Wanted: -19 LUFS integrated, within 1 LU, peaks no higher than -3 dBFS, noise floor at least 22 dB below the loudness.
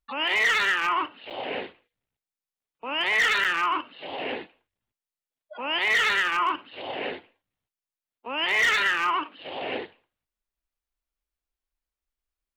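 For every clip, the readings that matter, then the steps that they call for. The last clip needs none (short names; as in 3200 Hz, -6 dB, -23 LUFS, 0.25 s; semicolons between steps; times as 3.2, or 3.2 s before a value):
clipped 0.5%; flat tops at -17.0 dBFS; dropouts 2; longest dropout 7.5 ms; loudness -24.5 LUFS; peak -17.0 dBFS; loudness target -19.0 LUFS
-> clip repair -17 dBFS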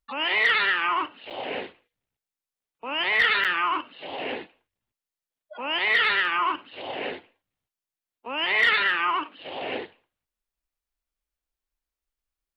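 clipped 0.0%; dropouts 2; longest dropout 7.5 ms
-> interpolate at 1.3/3.44, 7.5 ms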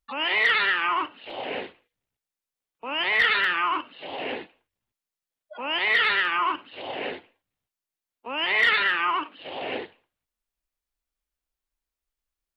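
dropouts 0; loudness -23.5 LUFS; peak -8.0 dBFS; loudness target -19.0 LUFS
-> gain +4.5 dB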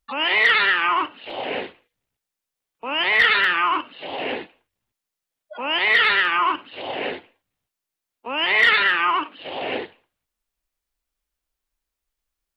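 loudness -19.0 LUFS; peak -3.5 dBFS; noise floor -85 dBFS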